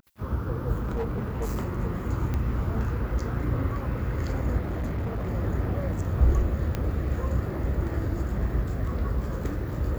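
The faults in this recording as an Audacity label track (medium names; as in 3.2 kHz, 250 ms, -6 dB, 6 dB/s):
0.750000	1.780000	clipped -25 dBFS
2.340000	2.340000	pop -18 dBFS
4.590000	5.310000	clipped -26 dBFS
6.750000	6.750000	pop -15 dBFS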